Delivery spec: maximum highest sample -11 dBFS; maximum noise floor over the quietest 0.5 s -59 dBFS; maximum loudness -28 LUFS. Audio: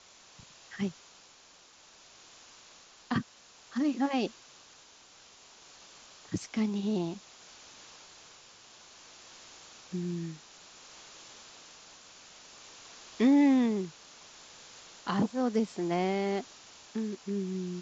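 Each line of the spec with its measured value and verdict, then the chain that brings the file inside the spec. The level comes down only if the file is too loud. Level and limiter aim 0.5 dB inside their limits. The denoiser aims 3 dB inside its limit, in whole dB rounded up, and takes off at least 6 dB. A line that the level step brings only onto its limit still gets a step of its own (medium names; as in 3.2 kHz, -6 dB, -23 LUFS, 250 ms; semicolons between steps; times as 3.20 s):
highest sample -15.5 dBFS: pass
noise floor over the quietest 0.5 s -58 dBFS: fail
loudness -31.0 LUFS: pass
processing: noise reduction 6 dB, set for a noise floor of -58 dBFS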